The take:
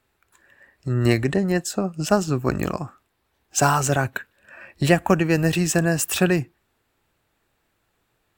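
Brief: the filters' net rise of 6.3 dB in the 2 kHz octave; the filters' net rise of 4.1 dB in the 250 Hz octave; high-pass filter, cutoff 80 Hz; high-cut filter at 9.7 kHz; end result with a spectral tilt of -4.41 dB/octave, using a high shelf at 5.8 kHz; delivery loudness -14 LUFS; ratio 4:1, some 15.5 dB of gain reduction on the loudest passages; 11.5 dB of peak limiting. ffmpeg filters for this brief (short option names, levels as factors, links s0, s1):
-af "highpass=80,lowpass=9700,equalizer=f=250:t=o:g=6.5,equalizer=f=2000:t=o:g=7,highshelf=f=5800:g=9,acompressor=threshold=0.0398:ratio=4,volume=12.6,alimiter=limit=0.708:level=0:latency=1"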